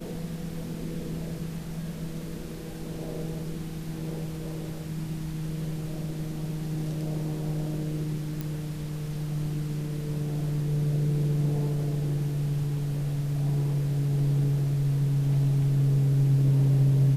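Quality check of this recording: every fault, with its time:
0:08.41: click

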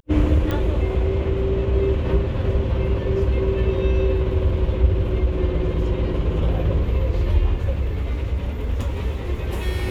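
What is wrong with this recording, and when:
0:00.51: click −13 dBFS

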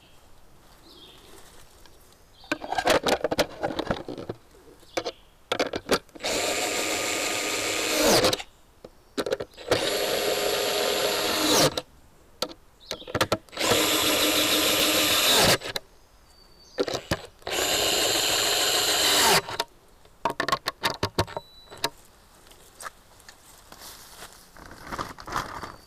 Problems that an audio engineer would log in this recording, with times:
0:14.80: click

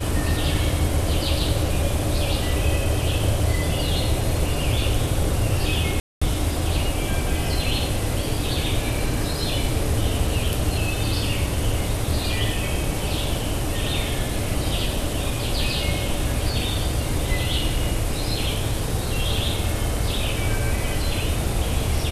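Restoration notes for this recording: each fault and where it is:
0:06.00–0:06.21: drop-out 215 ms

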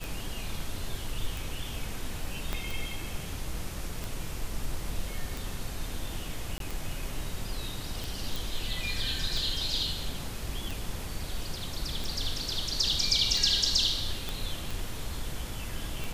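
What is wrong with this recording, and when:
scratch tick 45 rpm
0:02.53: click −16 dBFS
0:06.58–0:06.60: drop-out 22 ms
0:08.36: click
0:14.29: click

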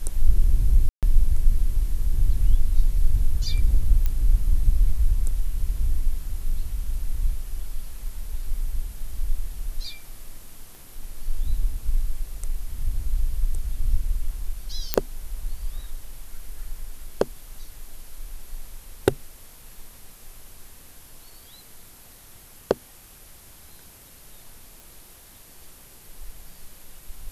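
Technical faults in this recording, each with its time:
0:00.89–0:01.03: drop-out 137 ms
0:04.06: click −12 dBFS
0:10.75: click
0:14.94: click −2 dBFS
0:24.80: click

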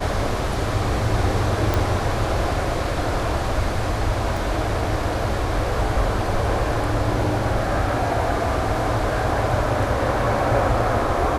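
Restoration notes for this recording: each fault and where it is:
0:01.74: click
0:04.37: drop-out 3.5 ms

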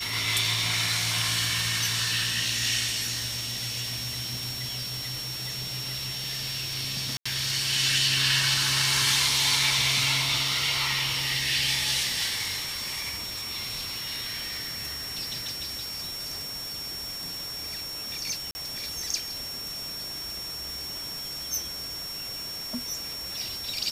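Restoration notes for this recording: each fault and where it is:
whistle 5,500 Hz −34 dBFS
0:07.17–0:07.25: drop-out 85 ms
0:18.51–0:18.55: drop-out 40 ms

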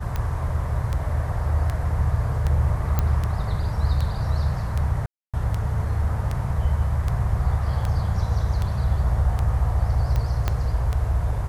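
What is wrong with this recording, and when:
scratch tick 78 rpm −14 dBFS
0:02.99: click −9 dBFS
0:05.06–0:05.34: drop-out 276 ms
0:10.48: click −9 dBFS

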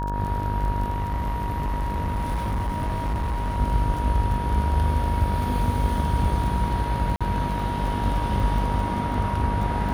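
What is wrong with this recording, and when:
mains buzz 50 Hz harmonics 35 −28 dBFS
surface crackle 25 per second −30 dBFS
whistle 950 Hz −29 dBFS
0:00.92–0:03.59: clipping −22 dBFS
0:07.16–0:07.21: drop-out 46 ms

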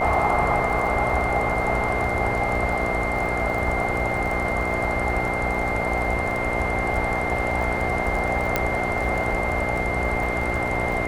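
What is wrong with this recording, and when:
mains buzz 60 Hz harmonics 12 −29 dBFS
surface crackle 26 per second −29 dBFS
whistle 2,100 Hz −27 dBFS
0:08.56: click −6 dBFS

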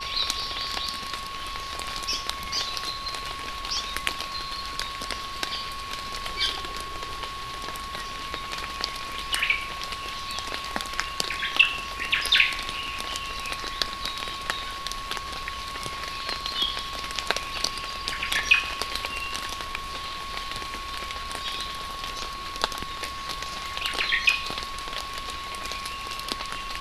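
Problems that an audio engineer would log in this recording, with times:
whistle 1,100 Hz −35 dBFS

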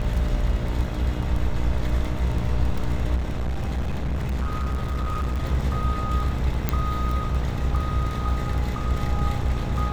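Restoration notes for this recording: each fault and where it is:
mains buzz 60 Hz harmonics 29 −28 dBFS
surface crackle 13 per second −27 dBFS
0:03.16–0:05.45: clipping −22 dBFS
0:06.69: click −8 dBFS

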